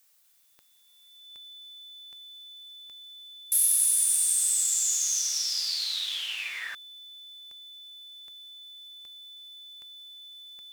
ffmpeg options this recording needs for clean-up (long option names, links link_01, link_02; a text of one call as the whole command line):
ffmpeg -i in.wav -af "adeclick=threshold=4,bandreject=frequency=3500:width=30,agate=range=-21dB:threshold=-48dB" out.wav